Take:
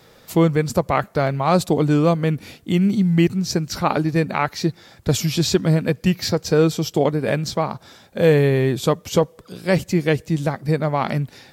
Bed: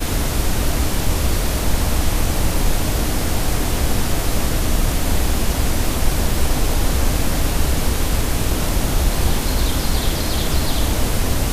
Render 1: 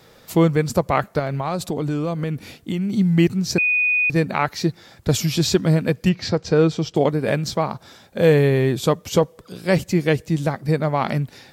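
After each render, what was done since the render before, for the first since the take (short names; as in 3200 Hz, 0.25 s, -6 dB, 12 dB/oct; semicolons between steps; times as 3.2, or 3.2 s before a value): 1.19–2.96 compressor, threshold -20 dBFS; 3.58–4.1 bleep 2480 Hz -15.5 dBFS; 6.09–6.96 air absorption 100 m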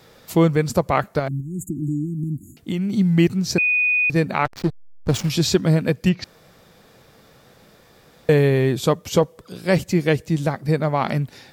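1.28–2.57 brick-wall FIR band-stop 370–6600 Hz; 4.45–5.3 backlash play -20 dBFS; 6.24–8.29 room tone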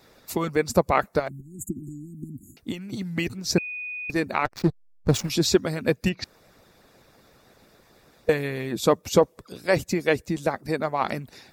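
notch 3100 Hz, Q 11; harmonic-percussive split harmonic -15 dB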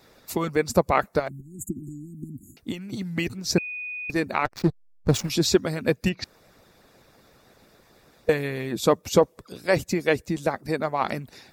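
nothing audible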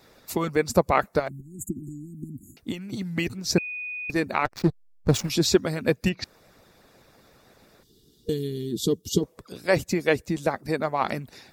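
7.83–9.23 spectral gain 470–2800 Hz -23 dB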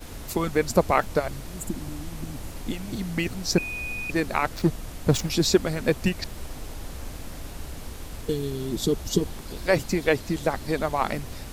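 add bed -19 dB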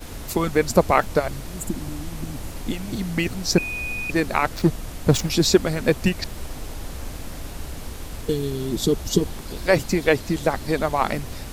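gain +3.5 dB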